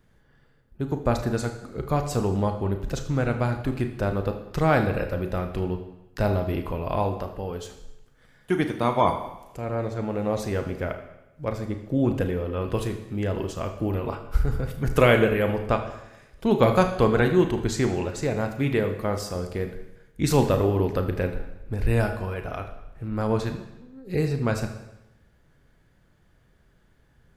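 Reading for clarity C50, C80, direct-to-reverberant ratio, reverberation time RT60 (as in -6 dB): 8.5 dB, 11.0 dB, 6.0 dB, 0.95 s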